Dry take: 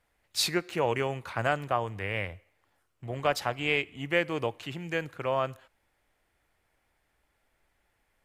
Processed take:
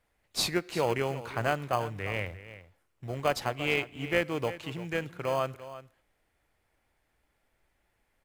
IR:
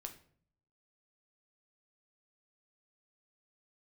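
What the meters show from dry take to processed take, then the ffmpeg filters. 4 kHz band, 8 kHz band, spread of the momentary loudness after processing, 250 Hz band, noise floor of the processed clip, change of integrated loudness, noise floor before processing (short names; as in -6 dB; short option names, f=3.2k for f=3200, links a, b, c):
-1.5 dB, -1.5 dB, 13 LU, 0.0 dB, -76 dBFS, -1.0 dB, -75 dBFS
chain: -filter_complex "[0:a]asplit=2[a][b];[b]acrusher=samples=24:mix=1:aa=0.000001,volume=-11.5dB[c];[a][c]amix=inputs=2:normalize=0,aecho=1:1:345:0.188,volume=-2dB"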